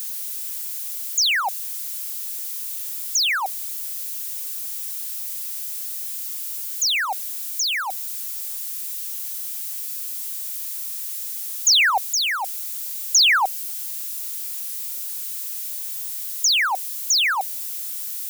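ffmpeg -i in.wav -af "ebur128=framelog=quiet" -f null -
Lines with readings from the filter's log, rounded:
Integrated loudness:
  I:         -22.5 LUFS
  Threshold: -32.5 LUFS
Loudness range:
  LRA:         7.5 LU
  Threshold: -42.6 LUFS
  LRA low:   -26.3 LUFS
  LRA high:  -18.9 LUFS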